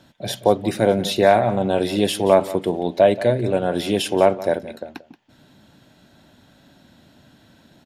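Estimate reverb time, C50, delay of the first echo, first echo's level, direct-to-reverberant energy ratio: none, none, 0.179 s, -16.5 dB, none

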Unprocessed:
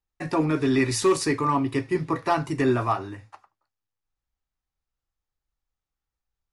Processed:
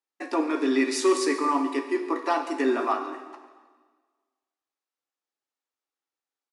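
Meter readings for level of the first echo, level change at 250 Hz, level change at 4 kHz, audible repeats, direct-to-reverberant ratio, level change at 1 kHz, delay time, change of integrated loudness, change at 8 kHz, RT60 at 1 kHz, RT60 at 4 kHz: -17.0 dB, -1.5 dB, -1.0 dB, 1, 6.5 dB, -0.5 dB, 0.141 s, -1.5 dB, -2.0 dB, 1.5 s, 1.4 s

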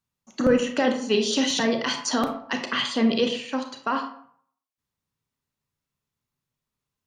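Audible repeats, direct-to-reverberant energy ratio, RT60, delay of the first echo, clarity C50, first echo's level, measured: none, 5.0 dB, 0.60 s, none, 8.0 dB, none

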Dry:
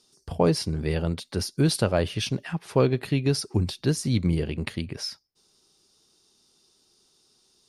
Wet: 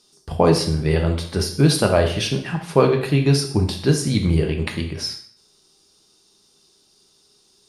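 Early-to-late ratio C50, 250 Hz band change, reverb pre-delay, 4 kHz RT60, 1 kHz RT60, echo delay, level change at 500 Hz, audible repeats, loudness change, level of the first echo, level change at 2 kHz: 8.0 dB, +5.5 dB, 4 ms, 0.50 s, 0.55 s, none, +7.0 dB, none, +6.5 dB, none, +7.0 dB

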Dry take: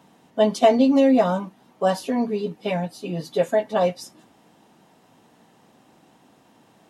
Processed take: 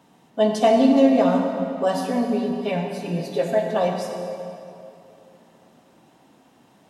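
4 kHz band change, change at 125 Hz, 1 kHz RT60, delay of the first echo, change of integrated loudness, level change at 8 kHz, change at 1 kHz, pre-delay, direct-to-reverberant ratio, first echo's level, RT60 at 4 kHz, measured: 0.0 dB, +1.5 dB, 2.7 s, none, 0.0 dB, -0.5 dB, +0.5 dB, 9 ms, 1.5 dB, none, 2.0 s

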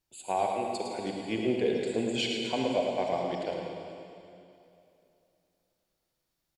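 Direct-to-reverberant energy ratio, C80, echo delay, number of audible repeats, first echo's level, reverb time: -0.5 dB, 0.5 dB, 0.108 s, 1, -6.0 dB, 2.7 s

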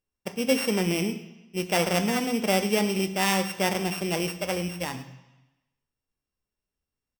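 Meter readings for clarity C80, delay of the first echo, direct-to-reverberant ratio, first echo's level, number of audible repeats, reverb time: 13.5 dB, 0.109 s, 7.5 dB, -19.0 dB, 1, 1.0 s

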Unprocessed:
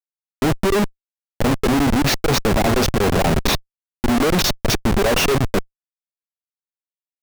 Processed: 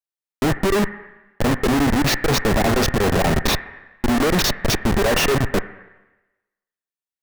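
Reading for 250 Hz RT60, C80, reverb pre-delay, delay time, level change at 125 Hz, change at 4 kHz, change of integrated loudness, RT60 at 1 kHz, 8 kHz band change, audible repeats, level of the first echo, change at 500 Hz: 0.95 s, 10.0 dB, 11 ms, none, -1.0 dB, -1.0 dB, -0.5 dB, 1.1 s, -1.0 dB, none, none, -1.0 dB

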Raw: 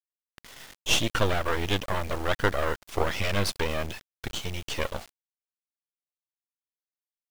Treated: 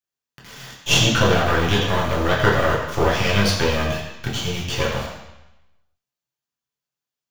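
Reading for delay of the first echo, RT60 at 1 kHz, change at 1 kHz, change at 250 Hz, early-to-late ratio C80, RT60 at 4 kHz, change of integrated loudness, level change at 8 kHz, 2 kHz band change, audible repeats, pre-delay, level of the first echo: none, 0.95 s, +9.0 dB, +10.5 dB, 5.5 dB, 0.95 s, +9.0 dB, +7.5 dB, +9.0 dB, none, 3 ms, none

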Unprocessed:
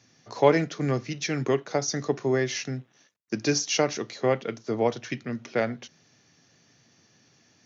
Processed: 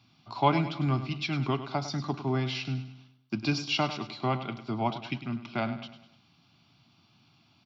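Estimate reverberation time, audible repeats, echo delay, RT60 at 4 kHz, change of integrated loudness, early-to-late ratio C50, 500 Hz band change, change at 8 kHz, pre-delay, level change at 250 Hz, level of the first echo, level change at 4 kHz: none, 4, 0.101 s, none, -4.0 dB, none, -10.0 dB, n/a, none, -2.0 dB, -12.0 dB, -1.0 dB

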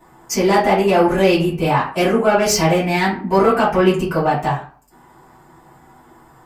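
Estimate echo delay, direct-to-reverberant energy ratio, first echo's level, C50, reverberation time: none, -12.0 dB, none, 7.0 dB, 0.45 s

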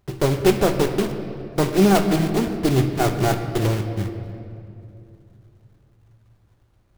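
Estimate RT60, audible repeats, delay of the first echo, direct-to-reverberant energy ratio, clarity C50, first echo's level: 2.7 s, none, none, 6.0 dB, 8.0 dB, none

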